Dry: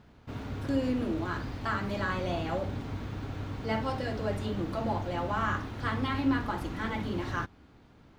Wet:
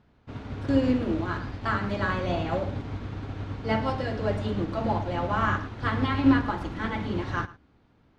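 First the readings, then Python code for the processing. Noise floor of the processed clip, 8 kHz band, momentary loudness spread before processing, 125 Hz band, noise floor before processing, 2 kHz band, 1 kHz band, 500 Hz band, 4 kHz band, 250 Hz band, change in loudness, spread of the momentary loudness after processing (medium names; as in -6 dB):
-62 dBFS, no reading, 9 LU, +4.5 dB, -57 dBFS, +4.0 dB, +4.0 dB, +4.0 dB, +2.5 dB, +5.5 dB, +4.5 dB, 12 LU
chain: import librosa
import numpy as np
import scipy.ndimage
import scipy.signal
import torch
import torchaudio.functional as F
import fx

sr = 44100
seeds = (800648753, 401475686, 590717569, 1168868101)

y = fx.air_absorb(x, sr, metres=68.0)
y = y + 10.0 ** (-12.5 / 20.0) * np.pad(y, (int(110 * sr / 1000.0), 0))[:len(y)]
y = fx.upward_expand(y, sr, threshold_db=-49.0, expansion=1.5)
y = y * 10.0 ** (8.0 / 20.0)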